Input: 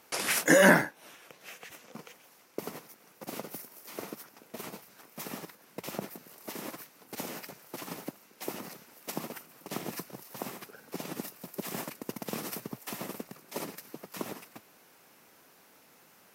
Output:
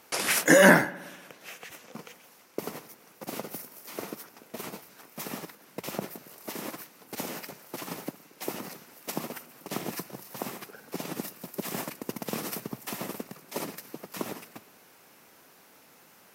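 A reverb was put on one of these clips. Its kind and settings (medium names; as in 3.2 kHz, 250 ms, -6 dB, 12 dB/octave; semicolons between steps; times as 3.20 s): spring tank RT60 1.3 s, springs 58 ms, chirp 65 ms, DRR 19 dB; trim +3 dB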